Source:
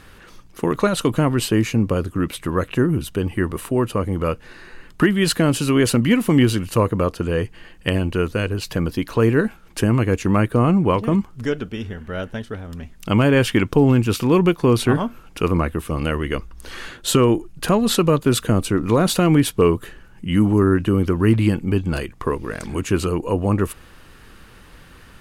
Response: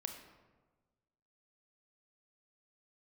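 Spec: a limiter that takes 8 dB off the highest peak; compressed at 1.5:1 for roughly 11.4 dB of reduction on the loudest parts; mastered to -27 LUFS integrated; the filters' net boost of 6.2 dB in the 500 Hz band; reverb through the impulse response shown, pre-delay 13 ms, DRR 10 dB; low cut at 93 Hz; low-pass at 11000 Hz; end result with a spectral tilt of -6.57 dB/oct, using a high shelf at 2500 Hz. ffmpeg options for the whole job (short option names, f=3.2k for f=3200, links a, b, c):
-filter_complex "[0:a]highpass=93,lowpass=11k,equalizer=f=500:t=o:g=8,highshelf=f=2.5k:g=-7.5,acompressor=threshold=-40dB:ratio=1.5,alimiter=limit=-18.5dB:level=0:latency=1,asplit=2[a][b];[1:a]atrim=start_sample=2205,adelay=13[c];[b][c]afir=irnorm=-1:irlink=0,volume=-8dB[d];[a][d]amix=inputs=2:normalize=0,volume=3dB"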